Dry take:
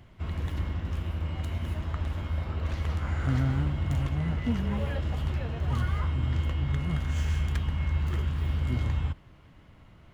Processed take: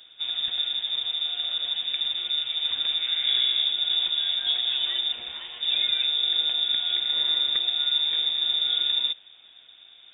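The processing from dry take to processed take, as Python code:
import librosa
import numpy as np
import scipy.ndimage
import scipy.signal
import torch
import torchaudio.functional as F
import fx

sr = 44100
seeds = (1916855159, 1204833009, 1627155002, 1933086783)

y = fx.low_shelf(x, sr, hz=400.0, db=-11.0, at=(5.12, 5.63))
y = fx.freq_invert(y, sr, carrier_hz=3600)
y = y * librosa.db_to_amplitude(1.0)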